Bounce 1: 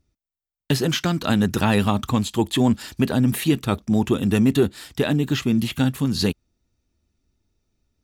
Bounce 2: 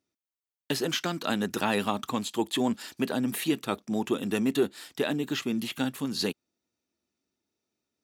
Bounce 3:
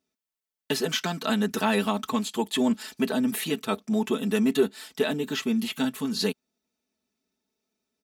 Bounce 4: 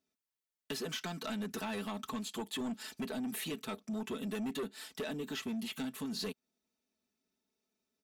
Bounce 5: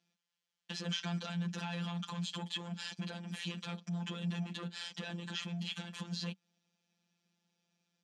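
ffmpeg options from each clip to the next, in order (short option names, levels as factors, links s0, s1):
-af "highpass=270,volume=0.562"
-af "aecho=1:1:4.6:0.8"
-filter_complex "[0:a]acrossover=split=890|6700[s0][s1][s2];[s0]volume=11.2,asoftclip=hard,volume=0.0891[s3];[s3][s1][s2]amix=inputs=3:normalize=0,acompressor=threshold=0.0282:ratio=2.5,asoftclip=type=tanh:threshold=0.0422,volume=0.596"
-af "alimiter=level_in=7.08:limit=0.0631:level=0:latency=1:release=16,volume=0.141,afftfilt=real='hypot(re,im)*cos(PI*b)':imag='0':win_size=1024:overlap=0.75,highpass=110,equalizer=f=190:t=q:w=4:g=8,equalizer=f=330:t=q:w=4:g=-9,equalizer=f=710:t=q:w=4:g=-4,equalizer=f=3100:t=q:w=4:g=6,lowpass=f=6900:w=0.5412,lowpass=f=6900:w=1.3066,volume=2.99"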